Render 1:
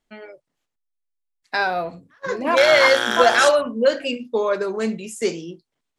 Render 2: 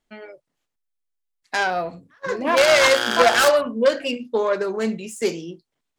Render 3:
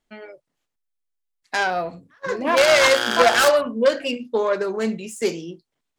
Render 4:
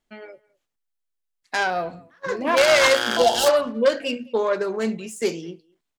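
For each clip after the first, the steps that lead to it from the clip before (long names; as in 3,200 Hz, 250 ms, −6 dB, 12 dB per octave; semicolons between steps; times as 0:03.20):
phase distortion by the signal itself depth 0.16 ms
no processing that can be heard
gain on a spectral selection 0:03.18–0:03.47, 1,000–2,700 Hz −16 dB; far-end echo of a speakerphone 210 ms, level −24 dB; level −1 dB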